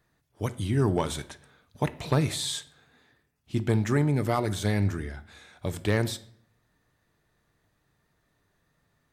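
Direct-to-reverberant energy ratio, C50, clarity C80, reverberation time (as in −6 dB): 11.5 dB, 17.0 dB, 21.0 dB, 0.65 s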